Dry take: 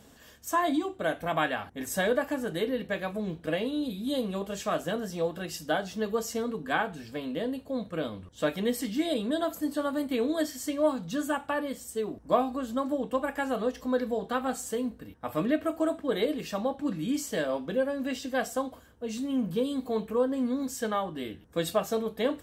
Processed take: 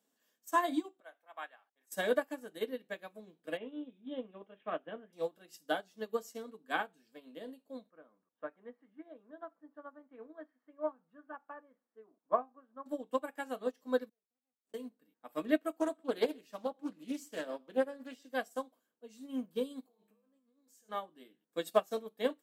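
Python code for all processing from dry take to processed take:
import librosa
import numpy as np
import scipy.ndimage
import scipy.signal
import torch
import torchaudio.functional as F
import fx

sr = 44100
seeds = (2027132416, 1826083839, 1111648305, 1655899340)

y = fx.chain(x, sr, fx.highpass(hz=860.0, slope=12),
    fx.high_shelf(hz=2100.0, db=-11.5),
    fx.band_widen(depth_pct=40), at=(1.0, 1.92))
y = fx.chain(y, sr, fx.savgol(points=25),
    fx.resample_bad(factor=6, down='none', up='filtered'), at=(3.57, 5.13))
y = fx.chain(y, sr, fx.lowpass(hz=1400.0, slope=24),
    fx.tilt_shelf(db=-8.5, hz=1100.0), at=(7.9, 12.86))
y = fx.chain(y, sr, fx.median_filter(points=41),
    fx.gate_flip(shuts_db=-40.0, range_db=-37), at=(14.09, 14.74))
y = fx.chain(y, sr, fx.echo_single(ms=123, db=-17.0),
    fx.doppler_dist(depth_ms=0.24), at=(15.72, 18.25))
y = fx.chain(y, sr, fx.over_compress(threshold_db=-36.0, ratio=-1.0),
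    fx.comb_fb(f0_hz=69.0, decay_s=0.77, harmonics='odd', damping=0.0, mix_pct=80), at=(19.86, 20.89))
y = scipy.signal.sosfilt(scipy.signal.butter(4, 210.0, 'highpass', fs=sr, output='sos'), y)
y = fx.high_shelf(y, sr, hz=7200.0, db=7.0)
y = fx.upward_expand(y, sr, threshold_db=-38.0, expansion=2.5)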